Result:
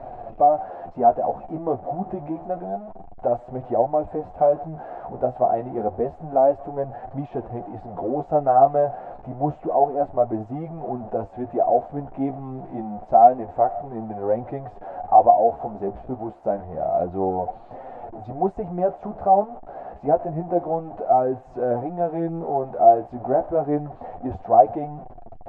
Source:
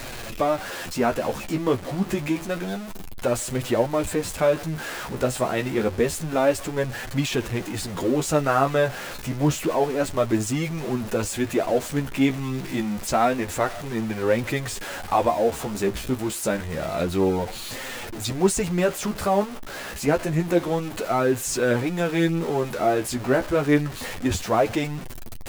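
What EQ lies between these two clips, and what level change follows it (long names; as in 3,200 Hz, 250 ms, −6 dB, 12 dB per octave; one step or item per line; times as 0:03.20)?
low-pass with resonance 730 Hz, resonance Q 8.6
−6.5 dB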